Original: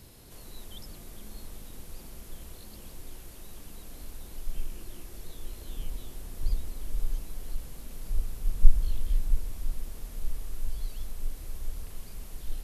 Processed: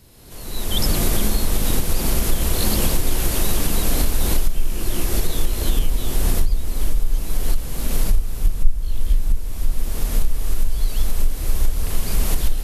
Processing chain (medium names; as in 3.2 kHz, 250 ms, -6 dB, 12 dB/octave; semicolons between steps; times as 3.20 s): recorder AGC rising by 31 dB/s